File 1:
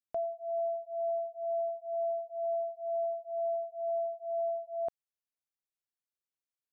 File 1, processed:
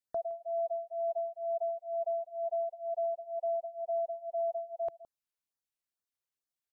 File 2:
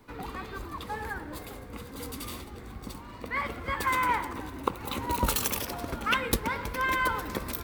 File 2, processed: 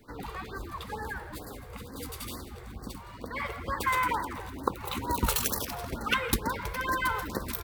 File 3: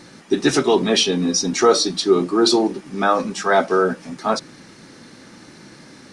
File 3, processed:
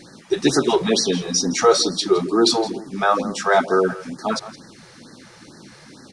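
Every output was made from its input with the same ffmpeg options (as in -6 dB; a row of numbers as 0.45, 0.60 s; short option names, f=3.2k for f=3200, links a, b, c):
-filter_complex "[0:a]asplit=2[a][b];[b]aecho=0:1:165:0.141[c];[a][c]amix=inputs=2:normalize=0,afftfilt=real='re*(1-between(b*sr/1024,220*pow(2900/220,0.5+0.5*sin(2*PI*2.2*pts/sr))/1.41,220*pow(2900/220,0.5+0.5*sin(2*PI*2.2*pts/sr))*1.41))':imag='im*(1-between(b*sr/1024,220*pow(2900/220,0.5+0.5*sin(2*PI*2.2*pts/sr))/1.41,220*pow(2900/220,0.5+0.5*sin(2*PI*2.2*pts/sr))*1.41))':win_size=1024:overlap=0.75"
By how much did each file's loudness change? -0.5, -1.0, -1.0 LU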